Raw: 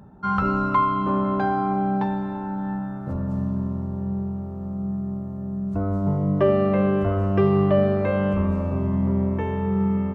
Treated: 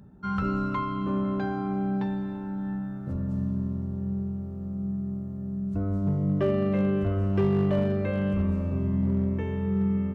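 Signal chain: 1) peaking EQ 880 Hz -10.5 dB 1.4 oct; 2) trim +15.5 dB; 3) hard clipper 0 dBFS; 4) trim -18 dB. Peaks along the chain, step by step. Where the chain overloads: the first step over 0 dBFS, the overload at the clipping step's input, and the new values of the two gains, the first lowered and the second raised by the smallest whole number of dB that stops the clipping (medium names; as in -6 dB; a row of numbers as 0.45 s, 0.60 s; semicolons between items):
-10.5 dBFS, +5.0 dBFS, 0.0 dBFS, -18.0 dBFS; step 2, 5.0 dB; step 2 +10.5 dB, step 4 -13 dB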